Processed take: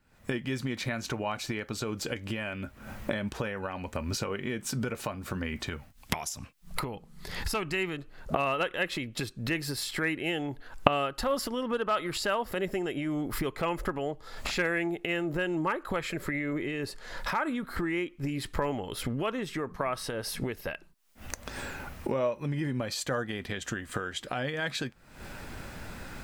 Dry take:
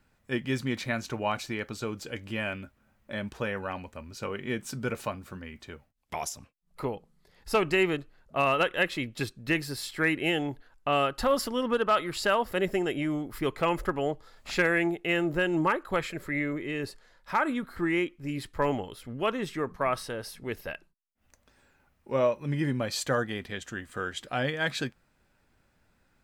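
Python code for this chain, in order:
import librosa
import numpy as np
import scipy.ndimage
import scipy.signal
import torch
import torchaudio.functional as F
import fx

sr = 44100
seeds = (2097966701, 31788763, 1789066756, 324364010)

y = fx.recorder_agc(x, sr, target_db=-20.5, rise_db_per_s=73.0, max_gain_db=30)
y = fx.peak_eq(y, sr, hz=510.0, db=-6.0, octaves=1.4, at=(5.67, 7.97))
y = F.gain(torch.from_numpy(y), -4.0).numpy()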